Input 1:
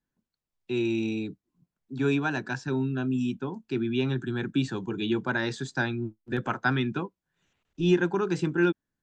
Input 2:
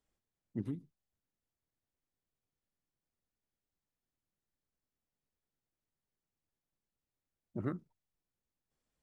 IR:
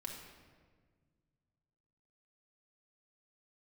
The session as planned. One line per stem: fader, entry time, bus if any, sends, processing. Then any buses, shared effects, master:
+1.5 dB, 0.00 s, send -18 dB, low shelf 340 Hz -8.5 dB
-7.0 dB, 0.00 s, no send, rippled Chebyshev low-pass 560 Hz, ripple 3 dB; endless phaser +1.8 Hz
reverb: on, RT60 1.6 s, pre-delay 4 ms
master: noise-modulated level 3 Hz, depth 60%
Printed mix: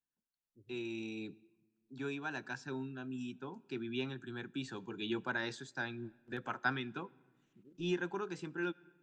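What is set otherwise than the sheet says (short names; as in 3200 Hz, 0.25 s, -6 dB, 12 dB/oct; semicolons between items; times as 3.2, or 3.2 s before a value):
stem 1 +1.5 dB -> -5.0 dB; stem 2 -7.0 dB -> -16.0 dB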